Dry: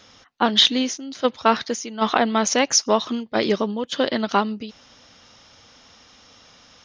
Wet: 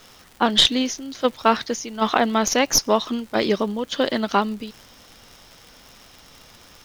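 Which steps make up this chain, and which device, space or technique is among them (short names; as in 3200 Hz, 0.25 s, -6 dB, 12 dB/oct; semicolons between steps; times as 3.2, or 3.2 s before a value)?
record under a worn stylus (tracing distortion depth 0.02 ms; crackle 100/s -33 dBFS; pink noise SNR 30 dB)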